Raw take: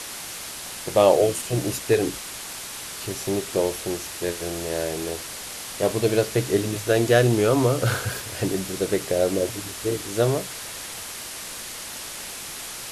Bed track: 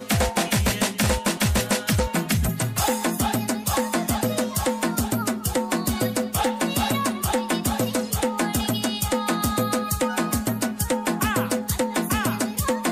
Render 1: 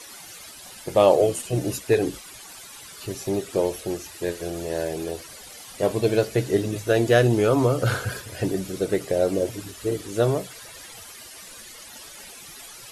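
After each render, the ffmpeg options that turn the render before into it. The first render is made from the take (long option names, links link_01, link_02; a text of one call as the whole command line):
ffmpeg -i in.wav -af "afftdn=noise_reduction=13:noise_floor=-36" out.wav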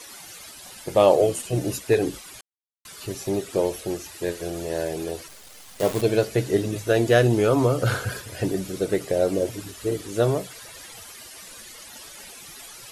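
ffmpeg -i in.wav -filter_complex "[0:a]asettb=1/sr,asplit=3[link_01][link_02][link_03];[link_01]atrim=end=5.284[link_04];[link_02]atrim=start=5.28:end=6.02,asetpts=PTS-STARTPTS,afade=type=in:duration=0.004:curve=qsin,afade=type=out:start_time=0.736:duration=0.004:curve=qsin,acrusher=bits=6:dc=4:mix=0:aa=0.000001[link_05];[link_03]atrim=start=6.016[link_06];[link_04][link_05]acrossfade=duration=0.004:curve1=hsin:curve2=qsin[link_07];[link_07][link_06]acrossfade=duration=0.004:curve1=qsin:curve2=hsin,asplit=3[link_08][link_09][link_10];[link_08]atrim=end=2.41,asetpts=PTS-STARTPTS,afade=type=out:start_time=2.406:duration=0.004:curve=hsin[link_11];[link_09]atrim=start=2.41:end=2.85,asetpts=PTS-STARTPTS,volume=0[link_12];[link_10]atrim=start=2.85,asetpts=PTS-STARTPTS,afade=type=in:duration=0.004:curve=hsin[link_13];[link_11][link_12][link_13]concat=n=3:v=0:a=1" out.wav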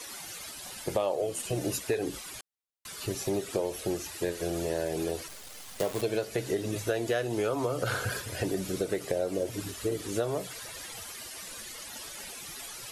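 ffmpeg -i in.wav -filter_complex "[0:a]acrossover=split=380[link_01][link_02];[link_01]alimiter=level_in=0.5dB:limit=-24dB:level=0:latency=1:release=216,volume=-0.5dB[link_03];[link_03][link_02]amix=inputs=2:normalize=0,acompressor=threshold=-26dB:ratio=6" out.wav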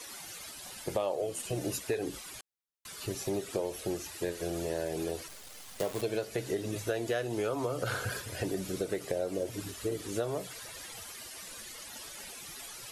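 ffmpeg -i in.wav -af "volume=-3dB" out.wav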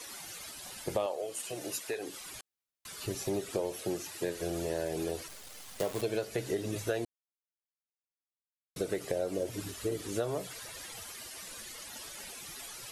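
ffmpeg -i in.wav -filter_complex "[0:a]asettb=1/sr,asplit=3[link_01][link_02][link_03];[link_01]atrim=end=1.064[link_04];[link_02]atrim=start=1.06:end=2.21,asetpts=PTS-STARTPTS,afade=type=in:duration=0.004:curve=qsin,afade=type=out:start_time=1.146:duration=0.004:curve=qsin,highpass=frequency=600:poles=1[link_05];[link_03]atrim=start=2.206[link_06];[link_04][link_05]acrossfade=duration=0.004:curve1=hsin:curve2=qsin[link_07];[link_07][link_06]acrossfade=duration=0.004:curve1=qsin:curve2=hsin,asettb=1/sr,asplit=3[link_08][link_09][link_10];[link_08]atrim=end=3.714[link_11];[link_09]atrim=start=3.71:end=4.35,asetpts=PTS-STARTPTS,afade=type=in:duration=0.004:curve=qsin,afade=type=out:start_time=0.636:duration=0.004:curve=qsin,highpass=frequency=100:width=0.5412,highpass=frequency=100:width=1.3066[link_12];[link_10]atrim=start=4.346[link_13];[link_11][link_12]acrossfade=duration=0.004:curve1=hsin:curve2=qsin[link_14];[link_14][link_13]acrossfade=duration=0.004:curve1=qsin:curve2=hsin,asplit=3[link_15][link_16][link_17];[link_15]atrim=end=7.05,asetpts=PTS-STARTPTS,afade=type=out:start_time=7.046:duration=0.004:curve=hsin[link_18];[link_16]atrim=start=7.05:end=8.76,asetpts=PTS-STARTPTS,volume=0[link_19];[link_17]atrim=start=8.76,asetpts=PTS-STARTPTS,afade=type=in:duration=0.004:curve=hsin[link_20];[link_18][link_19][link_20]concat=n=3:v=0:a=1" out.wav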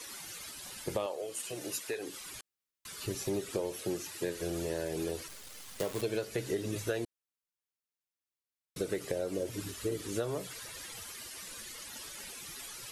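ffmpeg -i in.wav -af "equalizer=frequency=700:width_type=o:width=0.54:gain=-5.5" out.wav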